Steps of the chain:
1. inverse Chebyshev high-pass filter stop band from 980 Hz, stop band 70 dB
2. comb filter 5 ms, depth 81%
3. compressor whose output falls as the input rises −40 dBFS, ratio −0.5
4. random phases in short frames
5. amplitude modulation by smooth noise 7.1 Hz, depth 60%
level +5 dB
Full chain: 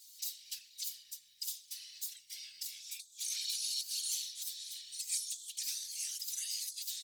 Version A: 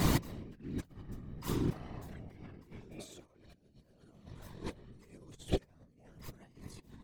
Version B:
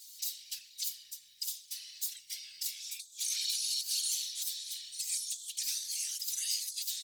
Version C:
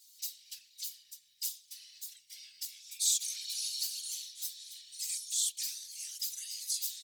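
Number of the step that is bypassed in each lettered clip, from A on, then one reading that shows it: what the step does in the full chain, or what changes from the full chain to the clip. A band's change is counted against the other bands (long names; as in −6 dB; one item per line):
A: 1, change in crest factor +7.0 dB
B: 5, change in integrated loudness +3.5 LU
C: 3, change in crest factor +6.5 dB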